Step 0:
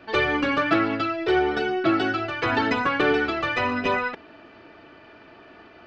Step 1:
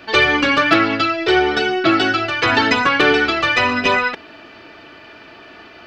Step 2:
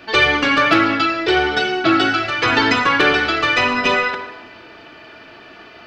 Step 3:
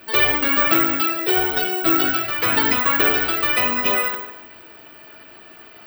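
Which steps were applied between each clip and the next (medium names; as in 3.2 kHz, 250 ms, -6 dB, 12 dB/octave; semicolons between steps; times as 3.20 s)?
treble shelf 2.3 kHz +11.5 dB; trim +5 dB
plate-style reverb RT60 1.2 s, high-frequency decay 0.75×, DRR 6 dB; trim -1 dB
careless resampling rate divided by 2×, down filtered, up zero stuff; trim -5.5 dB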